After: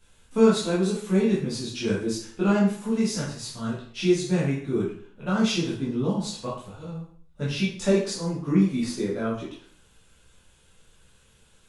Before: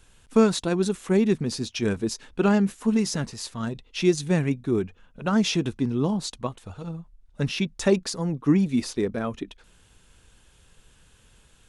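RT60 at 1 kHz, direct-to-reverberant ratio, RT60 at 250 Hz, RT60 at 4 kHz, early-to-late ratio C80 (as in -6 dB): 0.50 s, -8.0 dB, 0.55 s, 0.50 s, 8.0 dB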